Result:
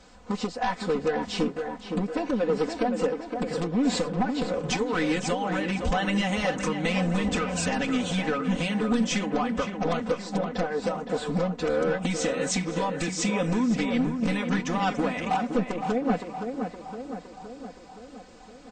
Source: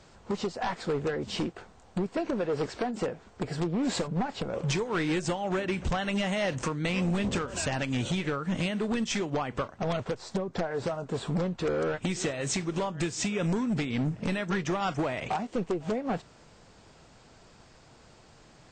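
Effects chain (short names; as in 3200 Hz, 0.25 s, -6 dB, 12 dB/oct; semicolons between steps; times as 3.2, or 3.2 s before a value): comb 4 ms, depth 93%; on a send: tape echo 0.516 s, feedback 66%, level -5 dB, low-pass 2000 Hz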